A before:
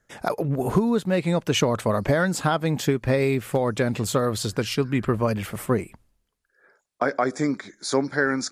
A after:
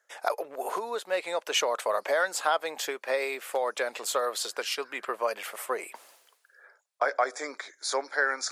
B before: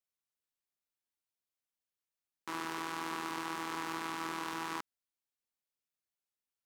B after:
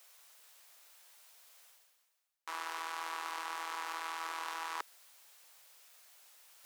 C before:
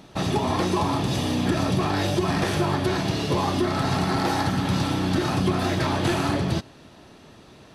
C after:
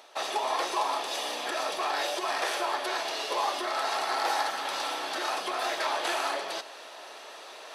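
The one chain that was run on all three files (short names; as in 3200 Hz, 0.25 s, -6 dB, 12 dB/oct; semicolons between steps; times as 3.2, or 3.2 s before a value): HPF 530 Hz 24 dB/oct; reverse; upward compressor, threshold -33 dBFS; reverse; gain -1.5 dB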